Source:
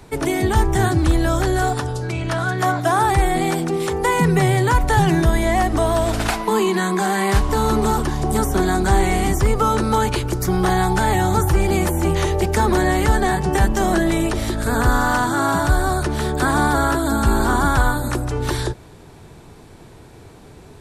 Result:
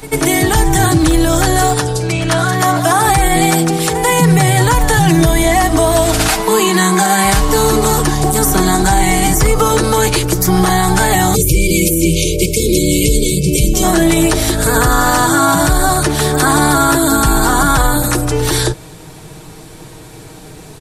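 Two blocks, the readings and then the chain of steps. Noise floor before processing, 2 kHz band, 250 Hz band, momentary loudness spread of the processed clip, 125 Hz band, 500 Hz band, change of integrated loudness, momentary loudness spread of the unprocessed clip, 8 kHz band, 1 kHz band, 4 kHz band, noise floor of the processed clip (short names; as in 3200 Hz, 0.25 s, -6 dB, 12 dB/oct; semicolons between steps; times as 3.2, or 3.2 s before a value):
-43 dBFS, +6.0 dB, +6.5 dB, 3 LU, +5.0 dB, +5.5 dB, +6.5 dB, 5 LU, +14.5 dB, +5.5 dB, +11.0 dB, -35 dBFS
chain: spectral delete 11.35–13.83, 600–2100 Hz; high shelf 4200 Hz +10 dB; comb 6.4 ms, depth 55%; on a send: reverse echo 93 ms -15 dB; on the sum: maximiser +7.5 dB; gain -1 dB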